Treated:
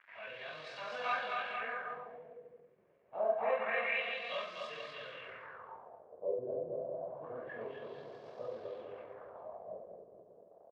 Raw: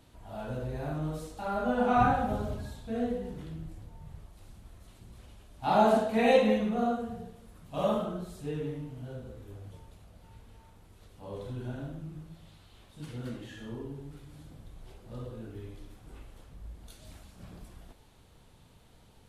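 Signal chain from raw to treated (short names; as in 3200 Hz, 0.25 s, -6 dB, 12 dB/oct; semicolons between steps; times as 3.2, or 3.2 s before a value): HPF 170 Hz 12 dB/oct; comb 1.8 ms, depth 63%; in parallel at +1.5 dB: compressor 4:1, threshold -41 dBFS, peak gain reduction 22 dB; on the sum: requantised 8-bit, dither none; band-pass sweep 2200 Hz -> 690 Hz, 8.56–10.82; on a send: bouncing-ball echo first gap 0.44 s, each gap 0.85×, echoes 5; on the sum: tempo 1.8×; LFO low-pass sine 0.27 Hz 420–5100 Hz; gain +1.5 dB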